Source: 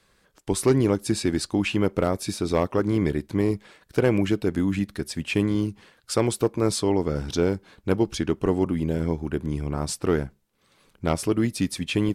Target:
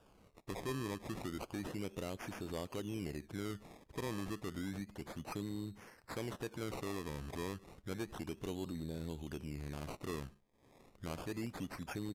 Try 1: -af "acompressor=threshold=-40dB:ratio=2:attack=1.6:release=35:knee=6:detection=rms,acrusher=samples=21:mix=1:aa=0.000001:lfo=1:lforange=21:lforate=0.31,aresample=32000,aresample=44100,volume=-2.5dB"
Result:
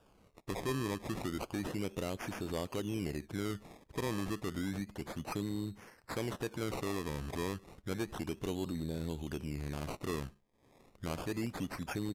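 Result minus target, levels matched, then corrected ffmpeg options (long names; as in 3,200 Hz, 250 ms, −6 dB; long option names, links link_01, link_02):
downward compressor: peak gain reduction −4.5 dB
-af "acompressor=threshold=-49dB:ratio=2:attack=1.6:release=35:knee=6:detection=rms,acrusher=samples=21:mix=1:aa=0.000001:lfo=1:lforange=21:lforate=0.31,aresample=32000,aresample=44100,volume=-2.5dB"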